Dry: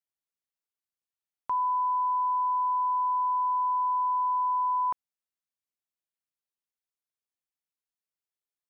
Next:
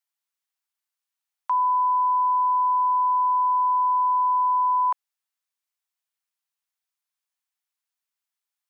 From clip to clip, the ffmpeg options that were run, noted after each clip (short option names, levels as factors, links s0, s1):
-af "highpass=f=750:w=0.5412,highpass=f=750:w=1.3066,volume=2"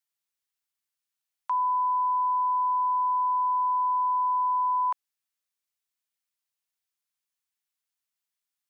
-af "equalizer=f=750:t=o:w=2.4:g=-4.5"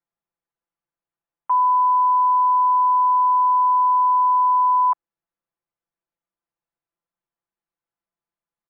-af "lowpass=1000,aecho=1:1:5.9:0.86,volume=2.11"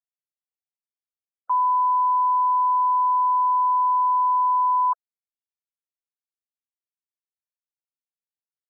-af "afftfilt=real='re*gte(hypot(re,im),0.0126)':imag='im*gte(hypot(re,im),0.0126)':win_size=1024:overlap=0.75,equalizer=f=1100:t=o:w=0.67:g=4.5,volume=0.447"